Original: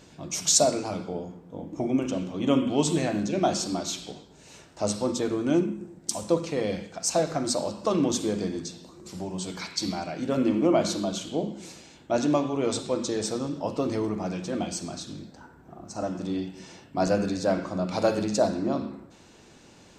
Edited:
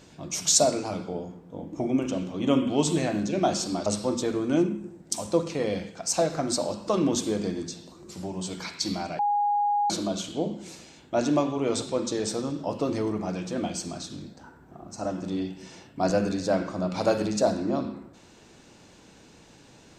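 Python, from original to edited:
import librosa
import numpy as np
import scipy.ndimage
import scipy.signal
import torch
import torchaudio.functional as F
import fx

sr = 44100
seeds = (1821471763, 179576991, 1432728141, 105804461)

y = fx.edit(x, sr, fx.cut(start_s=3.86, length_s=0.97),
    fx.bleep(start_s=10.16, length_s=0.71, hz=823.0, db=-21.0), tone=tone)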